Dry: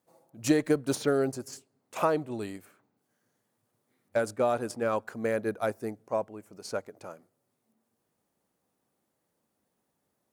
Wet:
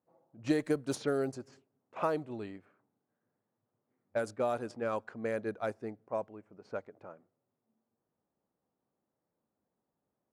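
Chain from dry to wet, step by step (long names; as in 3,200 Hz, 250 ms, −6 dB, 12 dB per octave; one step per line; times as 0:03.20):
low-pass that shuts in the quiet parts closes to 1,300 Hz, open at −22 dBFS
level −5.5 dB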